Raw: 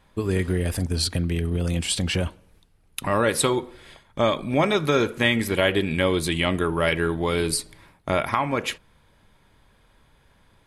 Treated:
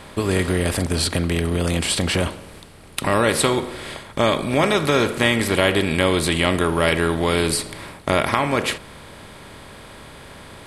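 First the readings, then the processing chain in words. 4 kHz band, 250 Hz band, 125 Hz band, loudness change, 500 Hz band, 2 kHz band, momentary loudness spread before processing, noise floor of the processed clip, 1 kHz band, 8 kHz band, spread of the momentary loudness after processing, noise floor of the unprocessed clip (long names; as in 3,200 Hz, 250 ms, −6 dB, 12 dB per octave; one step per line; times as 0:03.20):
+4.5 dB, +3.5 dB, +2.5 dB, +3.5 dB, +3.5 dB, +4.5 dB, 7 LU, −42 dBFS, +4.0 dB, +4.0 dB, 9 LU, −60 dBFS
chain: compressor on every frequency bin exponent 0.6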